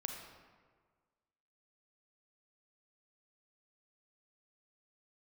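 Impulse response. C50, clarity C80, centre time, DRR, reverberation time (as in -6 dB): 3.5 dB, 5.0 dB, 49 ms, 2.5 dB, 1.6 s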